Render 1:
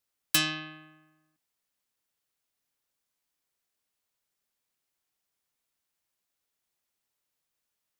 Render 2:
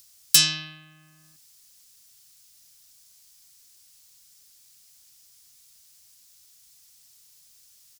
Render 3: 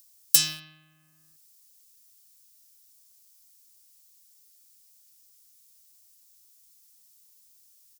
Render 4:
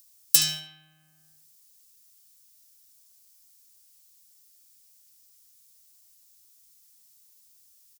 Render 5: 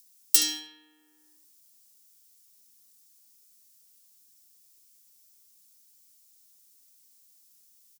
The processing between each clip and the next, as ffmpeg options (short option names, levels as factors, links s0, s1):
-filter_complex "[0:a]firequalizer=gain_entry='entry(140,0);entry(260,-14);entry(5100,9);entry(14000,5)':delay=0.05:min_phase=1,asplit=2[s0][s1];[s1]acompressor=mode=upward:threshold=0.00794:ratio=2.5,volume=1.26[s2];[s0][s2]amix=inputs=2:normalize=0,alimiter=level_in=1:limit=0.891:release=50:level=0:latency=1"
-filter_complex "[0:a]equalizer=f=4300:t=o:w=2.9:g=-2.5,asplit=2[s0][s1];[s1]acrusher=bits=4:mix=0:aa=0.000001,volume=0.398[s2];[s0][s2]amix=inputs=2:normalize=0,crystalizer=i=1:c=0,volume=0.335"
-filter_complex "[0:a]asplit=2[s0][s1];[s1]adelay=72,lowpass=f=3600:p=1,volume=0.596,asplit=2[s2][s3];[s3]adelay=72,lowpass=f=3600:p=1,volume=0.42,asplit=2[s4][s5];[s5]adelay=72,lowpass=f=3600:p=1,volume=0.42,asplit=2[s6][s7];[s7]adelay=72,lowpass=f=3600:p=1,volume=0.42,asplit=2[s8][s9];[s9]adelay=72,lowpass=f=3600:p=1,volume=0.42[s10];[s0][s2][s4][s6][s8][s10]amix=inputs=6:normalize=0"
-af "afreqshift=150,volume=0.841"